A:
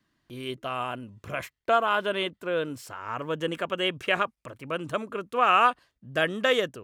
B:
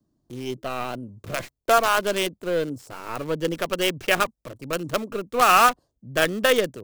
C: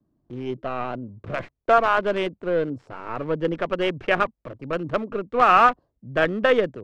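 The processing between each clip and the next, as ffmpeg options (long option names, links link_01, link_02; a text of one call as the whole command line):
ffmpeg -i in.wav -filter_complex "[0:a]equalizer=frequency=12000:width=0.56:gain=-9.5,bandreject=frequency=1000:width=23,acrossover=split=180|810|5600[link_01][link_02][link_03][link_04];[link_03]acrusher=bits=5:dc=4:mix=0:aa=0.000001[link_05];[link_01][link_02][link_05][link_04]amix=inputs=4:normalize=0,volume=4.5dB" out.wav
ffmpeg -i in.wav -af "lowpass=2000,volume=1.5dB" out.wav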